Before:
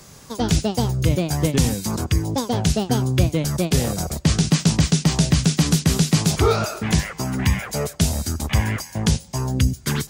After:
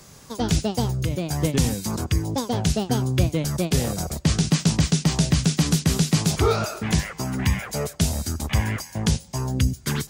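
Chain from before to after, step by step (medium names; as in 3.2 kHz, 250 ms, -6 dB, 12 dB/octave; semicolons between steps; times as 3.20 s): 0.93–1.36 s: compression, threshold -18 dBFS, peak gain reduction 6 dB; trim -2.5 dB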